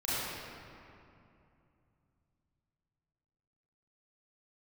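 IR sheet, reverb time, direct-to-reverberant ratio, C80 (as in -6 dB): 2.7 s, -12.0 dB, -3.5 dB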